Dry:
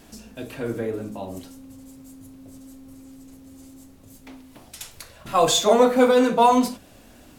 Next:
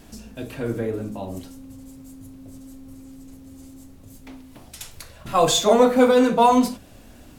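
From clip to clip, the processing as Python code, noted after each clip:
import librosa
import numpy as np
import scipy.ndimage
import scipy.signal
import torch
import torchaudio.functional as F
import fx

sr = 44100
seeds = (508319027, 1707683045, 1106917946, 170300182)

y = fx.low_shelf(x, sr, hz=160.0, db=7.0)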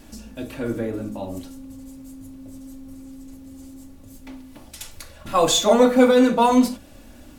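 y = x + 0.39 * np.pad(x, (int(3.5 * sr / 1000.0), 0))[:len(x)]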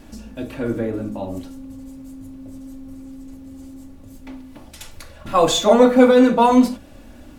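y = fx.high_shelf(x, sr, hz=3900.0, db=-7.5)
y = F.gain(torch.from_numpy(y), 3.0).numpy()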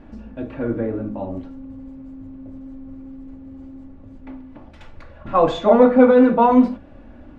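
y = scipy.signal.sosfilt(scipy.signal.butter(2, 1800.0, 'lowpass', fs=sr, output='sos'), x)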